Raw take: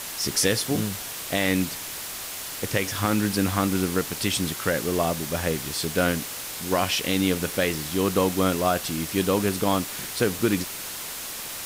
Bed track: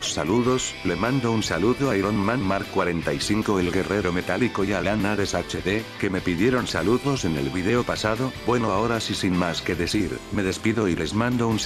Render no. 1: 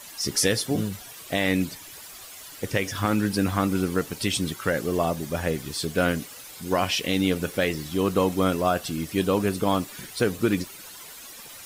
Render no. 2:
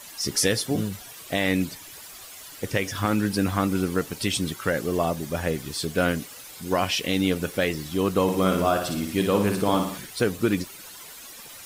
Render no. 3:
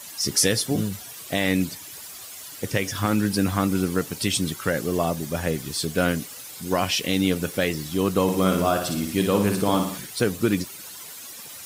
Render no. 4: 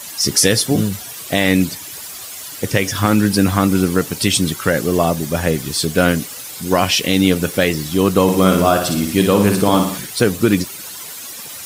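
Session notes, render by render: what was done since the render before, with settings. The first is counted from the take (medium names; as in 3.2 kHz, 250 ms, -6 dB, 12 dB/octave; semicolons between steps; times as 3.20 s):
noise reduction 12 dB, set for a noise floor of -35 dBFS
8.22–9.98 s: flutter echo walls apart 10 m, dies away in 0.62 s
high-pass 78 Hz; tone controls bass +3 dB, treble +4 dB
trim +8 dB; peak limiter -1 dBFS, peak gain reduction 2.5 dB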